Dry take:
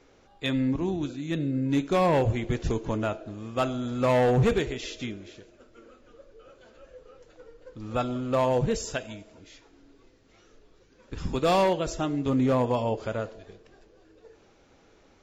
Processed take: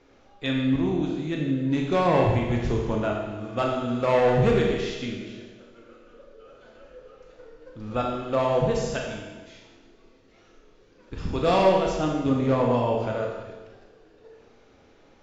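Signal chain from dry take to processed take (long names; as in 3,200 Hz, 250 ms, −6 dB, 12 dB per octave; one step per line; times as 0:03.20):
Bessel low-pass filter 5,000 Hz, order 8
four-comb reverb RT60 1.2 s, combs from 26 ms, DRR 0 dB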